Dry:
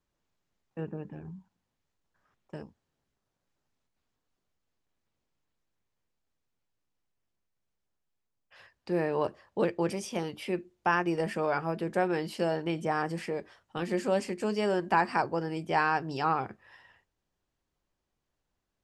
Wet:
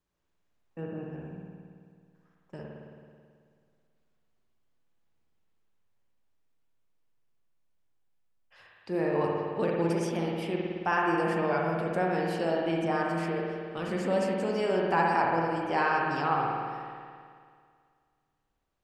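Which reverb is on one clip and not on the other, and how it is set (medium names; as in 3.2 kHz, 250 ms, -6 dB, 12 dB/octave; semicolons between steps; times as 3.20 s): spring tank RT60 2.1 s, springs 54 ms, chirp 35 ms, DRR -2 dB; trim -2.5 dB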